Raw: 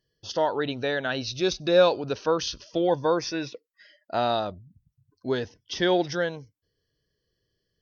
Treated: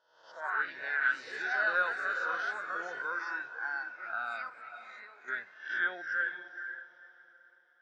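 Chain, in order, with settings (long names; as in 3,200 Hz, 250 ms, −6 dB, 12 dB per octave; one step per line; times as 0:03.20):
peak hold with a rise ahead of every peak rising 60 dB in 0.79 s
delay with pitch and tempo change per echo 138 ms, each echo +3 semitones, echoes 2
0:04.49–0:05.28: downward compressor 6 to 1, threshold −31 dBFS, peak gain reduction 11 dB
resonant band-pass 1,500 Hz, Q 9.7
on a send: feedback delay with all-pass diffusion 485 ms, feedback 42%, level −7 dB
on the sum: noise reduction from a noise print of the clip's start 9 dB
level +4 dB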